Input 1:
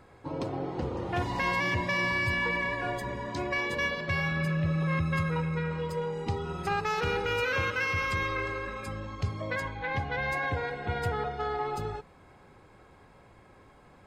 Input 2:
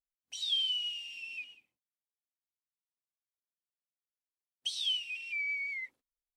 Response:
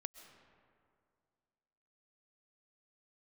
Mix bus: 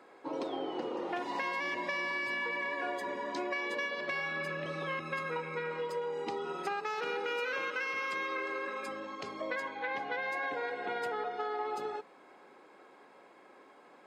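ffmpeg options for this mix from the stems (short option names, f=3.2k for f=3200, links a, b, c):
-filter_complex "[0:a]highpass=f=270:w=0.5412,highpass=f=270:w=1.3066,volume=0.5dB[a];[1:a]volume=-19dB[b];[a][b]amix=inputs=2:normalize=0,highshelf=f=7.7k:g=-8,acompressor=threshold=-32dB:ratio=6"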